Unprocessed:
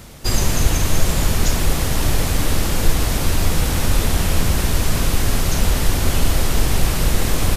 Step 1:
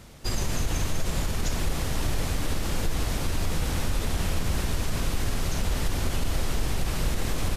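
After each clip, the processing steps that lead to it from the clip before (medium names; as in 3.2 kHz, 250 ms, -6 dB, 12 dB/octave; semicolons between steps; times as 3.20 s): treble shelf 11 kHz -8 dB; peak limiter -8.5 dBFS, peak gain reduction 6.5 dB; trim -8 dB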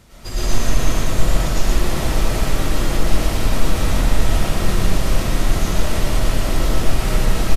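delay 119 ms -3 dB; algorithmic reverb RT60 1.1 s, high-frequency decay 0.35×, pre-delay 70 ms, DRR -8.5 dB; trim -2 dB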